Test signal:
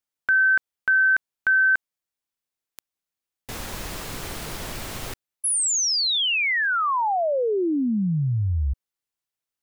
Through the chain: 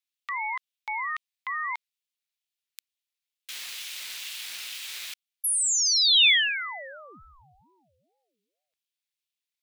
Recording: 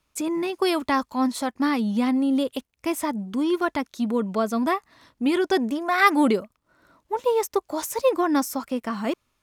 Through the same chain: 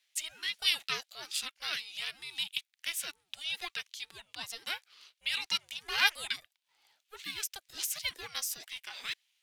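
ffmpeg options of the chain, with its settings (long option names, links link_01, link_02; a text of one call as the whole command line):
ffmpeg -i in.wav -af "highpass=frequency=3000:width_type=q:width=2.6,aeval=exprs='val(0)*sin(2*PI*490*n/s+490*0.4/2.2*sin(2*PI*2.2*n/s))':channel_layout=same" out.wav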